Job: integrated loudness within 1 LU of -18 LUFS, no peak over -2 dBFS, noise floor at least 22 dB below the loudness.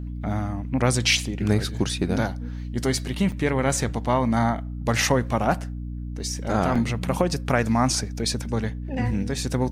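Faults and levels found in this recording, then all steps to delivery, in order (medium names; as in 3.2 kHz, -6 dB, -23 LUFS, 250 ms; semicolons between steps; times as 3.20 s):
dropouts 2; longest dropout 5.4 ms; hum 60 Hz; highest harmonic 300 Hz; hum level -29 dBFS; loudness -24.5 LUFS; peak level -6.0 dBFS; loudness target -18.0 LUFS
-> interpolate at 3.32/6.75 s, 5.4 ms; de-hum 60 Hz, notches 5; trim +6.5 dB; peak limiter -2 dBFS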